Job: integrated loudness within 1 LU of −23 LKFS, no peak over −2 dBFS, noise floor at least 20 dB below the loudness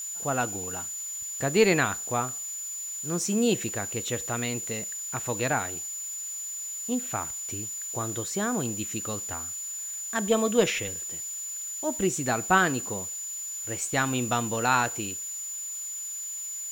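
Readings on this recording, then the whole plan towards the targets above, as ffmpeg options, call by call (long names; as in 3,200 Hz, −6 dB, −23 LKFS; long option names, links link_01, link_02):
interfering tone 7,000 Hz; level of the tone −33 dBFS; background noise floor −36 dBFS; target noise floor −49 dBFS; integrated loudness −28.5 LKFS; sample peak −8.5 dBFS; target loudness −23.0 LKFS
→ -af "bandreject=frequency=7000:width=30"
-af "afftdn=noise_reduction=13:noise_floor=-36"
-af "volume=5.5dB"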